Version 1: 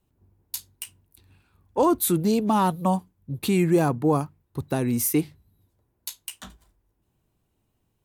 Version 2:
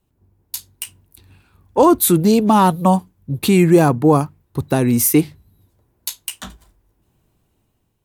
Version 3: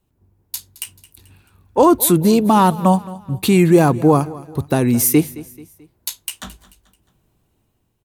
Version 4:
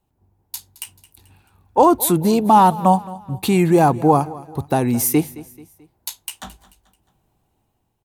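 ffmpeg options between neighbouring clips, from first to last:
-af "dynaudnorm=f=280:g=5:m=6dB,volume=3dB"
-af "aecho=1:1:218|436|654:0.112|0.0494|0.0217"
-af "equalizer=f=810:w=2.8:g=9.5,volume=-3.5dB"

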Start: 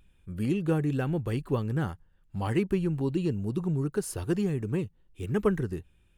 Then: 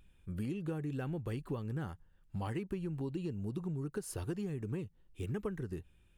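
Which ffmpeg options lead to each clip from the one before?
-af "acompressor=threshold=-33dB:ratio=6,volume=-2dB"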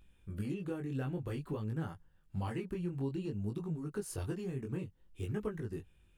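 -af "flanger=delay=18.5:depth=4.2:speed=0.54,volume=3dB"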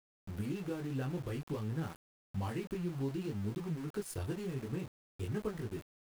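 -af "aeval=exprs='val(0)*gte(abs(val(0)),0.00501)':c=same"

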